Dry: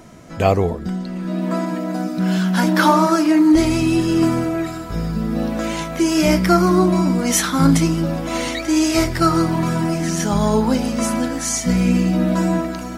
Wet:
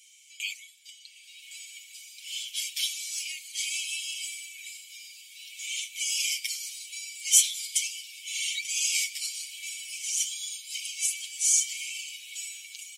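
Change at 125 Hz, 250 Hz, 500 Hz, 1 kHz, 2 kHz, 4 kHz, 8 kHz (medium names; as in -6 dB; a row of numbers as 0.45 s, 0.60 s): under -40 dB, under -40 dB, under -40 dB, under -40 dB, -9.5 dB, -1.5 dB, +0.5 dB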